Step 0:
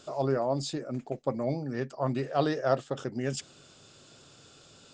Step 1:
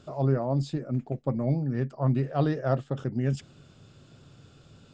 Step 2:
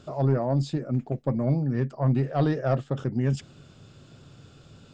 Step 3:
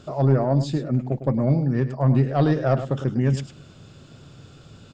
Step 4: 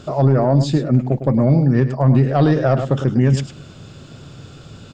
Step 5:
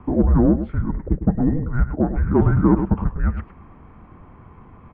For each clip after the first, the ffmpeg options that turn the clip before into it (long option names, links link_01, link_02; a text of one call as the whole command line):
ffmpeg -i in.wav -af "bass=frequency=250:gain=13,treble=frequency=4000:gain=-9,volume=-2.5dB" out.wav
ffmpeg -i in.wav -af "asoftclip=type=tanh:threshold=-15.5dB,volume=3dB" out.wav
ffmpeg -i in.wav -af "aecho=1:1:104:0.266,volume=4dB" out.wav
ffmpeg -i in.wav -af "alimiter=level_in=12.5dB:limit=-1dB:release=50:level=0:latency=1,volume=-5dB" out.wav
ffmpeg -i in.wav -af "lowshelf=frequency=260:width_type=q:width=3:gain=-13.5,highpass=frequency=360:width_type=q:width=0.5412,highpass=frequency=360:width_type=q:width=1.307,lowpass=frequency=2100:width_type=q:width=0.5176,lowpass=frequency=2100:width_type=q:width=0.7071,lowpass=frequency=2100:width_type=q:width=1.932,afreqshift=-340" out.wav